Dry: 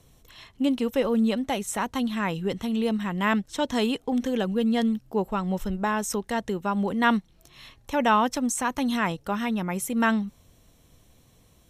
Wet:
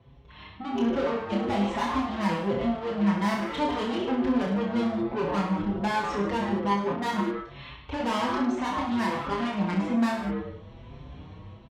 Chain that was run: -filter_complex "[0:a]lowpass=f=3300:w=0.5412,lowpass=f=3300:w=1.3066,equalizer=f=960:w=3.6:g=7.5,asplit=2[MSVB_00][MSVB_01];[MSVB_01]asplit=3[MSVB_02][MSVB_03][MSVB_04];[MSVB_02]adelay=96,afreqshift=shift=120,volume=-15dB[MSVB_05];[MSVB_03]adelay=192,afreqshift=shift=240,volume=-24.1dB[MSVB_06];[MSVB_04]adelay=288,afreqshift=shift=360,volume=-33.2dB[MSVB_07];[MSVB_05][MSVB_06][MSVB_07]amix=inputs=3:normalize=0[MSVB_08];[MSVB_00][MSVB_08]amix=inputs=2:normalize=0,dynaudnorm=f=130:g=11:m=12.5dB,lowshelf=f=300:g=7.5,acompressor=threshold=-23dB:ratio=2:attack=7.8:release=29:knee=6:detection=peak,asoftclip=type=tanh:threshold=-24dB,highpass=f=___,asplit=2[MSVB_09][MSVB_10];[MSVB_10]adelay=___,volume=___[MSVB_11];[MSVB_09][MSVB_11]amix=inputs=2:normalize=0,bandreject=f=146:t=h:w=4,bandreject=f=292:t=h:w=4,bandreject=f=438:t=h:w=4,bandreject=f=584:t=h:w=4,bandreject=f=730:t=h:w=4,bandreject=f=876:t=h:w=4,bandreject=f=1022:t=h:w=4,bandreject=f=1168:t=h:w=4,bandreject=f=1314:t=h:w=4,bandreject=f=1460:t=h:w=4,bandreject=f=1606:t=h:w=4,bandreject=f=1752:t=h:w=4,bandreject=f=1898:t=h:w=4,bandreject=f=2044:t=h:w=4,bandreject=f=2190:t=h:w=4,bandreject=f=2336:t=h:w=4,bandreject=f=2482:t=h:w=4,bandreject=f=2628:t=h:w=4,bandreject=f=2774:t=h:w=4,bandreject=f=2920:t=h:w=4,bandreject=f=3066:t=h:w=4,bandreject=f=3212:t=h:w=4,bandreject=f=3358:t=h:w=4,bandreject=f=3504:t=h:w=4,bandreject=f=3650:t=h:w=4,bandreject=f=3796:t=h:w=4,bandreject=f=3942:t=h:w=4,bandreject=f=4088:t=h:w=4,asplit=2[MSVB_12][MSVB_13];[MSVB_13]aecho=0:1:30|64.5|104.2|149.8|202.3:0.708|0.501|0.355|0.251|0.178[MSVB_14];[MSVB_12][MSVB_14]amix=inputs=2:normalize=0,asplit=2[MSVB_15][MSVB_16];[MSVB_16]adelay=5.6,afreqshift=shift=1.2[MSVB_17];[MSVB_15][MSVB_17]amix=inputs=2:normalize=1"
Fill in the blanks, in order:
52, 20, -11dB